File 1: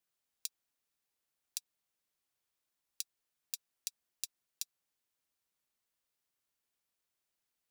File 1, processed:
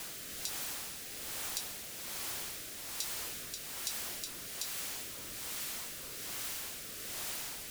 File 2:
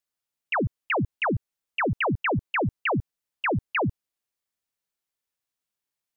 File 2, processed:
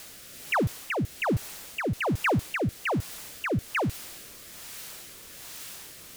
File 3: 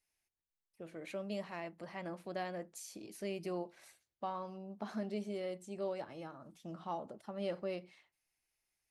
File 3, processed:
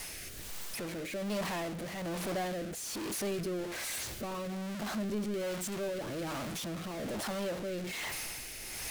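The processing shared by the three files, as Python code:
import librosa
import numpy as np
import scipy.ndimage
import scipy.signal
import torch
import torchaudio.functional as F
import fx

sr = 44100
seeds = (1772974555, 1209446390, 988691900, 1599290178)

y = x + 0.5 * 10.0 ** (-30.0 / 20.0) * np.sign(x)
y = fx.rotary(y, sr, hz=1.2)
y = F.gain(torch.from_numpy(y), -1.0).numpy()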